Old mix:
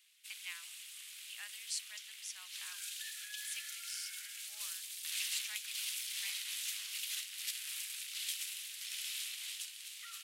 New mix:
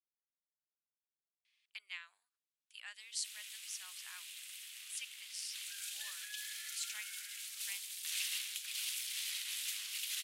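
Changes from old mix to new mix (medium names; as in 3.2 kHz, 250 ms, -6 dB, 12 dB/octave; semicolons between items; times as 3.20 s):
speech: entry +1.45 s; background: entry +3.00 s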